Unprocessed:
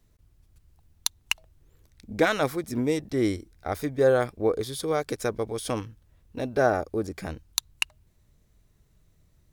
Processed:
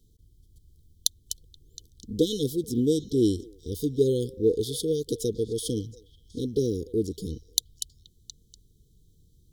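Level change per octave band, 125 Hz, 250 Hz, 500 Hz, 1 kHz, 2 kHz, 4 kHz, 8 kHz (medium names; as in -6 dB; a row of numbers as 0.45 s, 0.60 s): +2.5 dB, +2.5 dB, -1.0 dB, under -40 dB, under -40 dB, 0.0 dB, +2.5 dB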